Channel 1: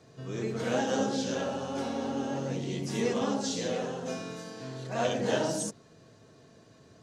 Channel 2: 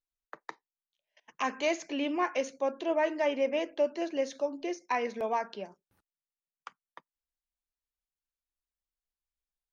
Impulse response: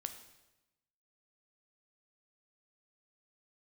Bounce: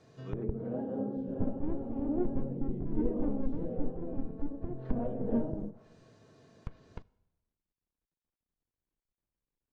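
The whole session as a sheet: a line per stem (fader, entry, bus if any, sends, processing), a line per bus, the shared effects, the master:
-6.0 dB, 0.00 s, send -6 dB, dry
+3.0 dB, 0.00 s, send -11 dB, running maximum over 65 samples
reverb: on, RT60 1.0 s, pre-delay 9 ms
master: treble ducked by the level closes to 430 Hz, closed at -31 dBFS; high shelf 5600 Hz -6 dB

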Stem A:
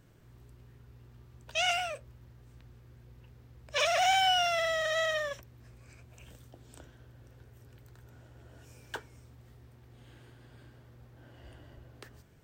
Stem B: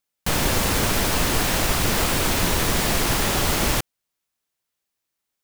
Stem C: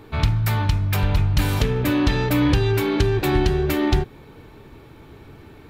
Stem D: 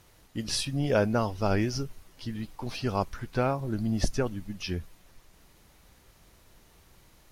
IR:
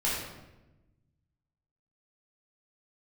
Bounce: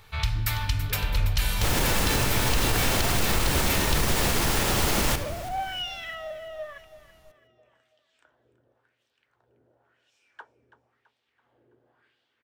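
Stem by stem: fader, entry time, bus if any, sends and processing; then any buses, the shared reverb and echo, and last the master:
-0.5 dB, 1.45 s, no send, echo send -15.5 dB, wah 0.95 Hz 390–3500 Hz, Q 2.2
-3.5 dB, 1.35 s, send -15.5 dB, echo send -17.5 dB, dry
+1.0 dB, 0.00 s, send -17.5 dB, echo send -11.5 dB, passive tone stack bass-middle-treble 10-0-10
-10.0 dB, 0.00 s, send -4.5 dB, no echo send, compressor, threshold -37 dBFS, peak gain reduction 17 dB; slew limiter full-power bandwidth 29 Hz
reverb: on, RT60 1.0 s, pre-delay 9 ms
echo: feedback echo 0.331 s, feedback 47%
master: limiter -13 dBFS, peak gain reduction 6 dB

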